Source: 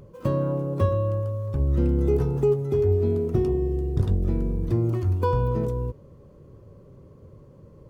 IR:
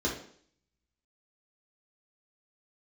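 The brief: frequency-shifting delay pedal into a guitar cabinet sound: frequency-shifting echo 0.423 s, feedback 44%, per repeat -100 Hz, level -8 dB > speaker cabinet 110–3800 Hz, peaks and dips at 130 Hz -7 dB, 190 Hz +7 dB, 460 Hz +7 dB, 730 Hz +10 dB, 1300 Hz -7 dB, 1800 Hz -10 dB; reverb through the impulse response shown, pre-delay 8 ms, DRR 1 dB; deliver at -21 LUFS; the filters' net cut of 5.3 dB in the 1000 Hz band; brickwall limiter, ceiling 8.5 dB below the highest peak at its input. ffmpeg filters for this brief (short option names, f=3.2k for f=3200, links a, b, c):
-filter_complex "[0:a]equalizer=f=1k:t=o:g=-8,alimiter=limit=-19dB:level=0:latency=1,asplit=2[a][b];[1:a]atrim=start_sample=2205,adelay=8[c];[b][c]afir=irnorm=-1:irlink=0,volume=-9dB[d];[a][d]amix=inputs=2:normalize=0,asplit=6[e][f][g][h][i][j];[f]adelay=423,afreqshift=-100,volume=-8dB[k];[g]adelay=846,afreqshift=-200,volume=-15.1dB[l];[h]adelay=1269,afreqshift=-300,volume=-22.3dB[m];[i]adelay=1692,afreqshift=-400,volume=-29.4dB[n];[j]adelay=2115,afreqshift=-500,volume=-36.5dB[o];[e][k][l][m][n][o]amix=inputs=6:normalize=0,highpass=110,equalizer=f=130:t=q:w=4:g=-7,equalizer=f=190:t=q:w=4:g=7,equalizer=f=460:t=q:w=4:g=7,equalizer=f=730:t=q:w=4:g=10,equalizer=f=1.3k:t=q:w=4:g=-7,equalizer=f=1.8k:t=q:w=4:g=-10,lowpass=f=3.8k:w=0.5412,lowpass=f=3.8k:w=1.3066"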